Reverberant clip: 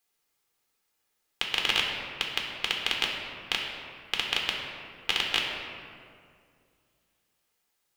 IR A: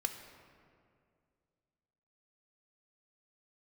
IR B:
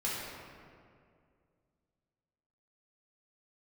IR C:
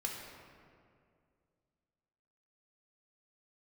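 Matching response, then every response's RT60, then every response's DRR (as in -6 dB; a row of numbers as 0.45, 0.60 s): C; 2.3, 2.2, 2.3 s; 6.0, -7.0, -0.5 dB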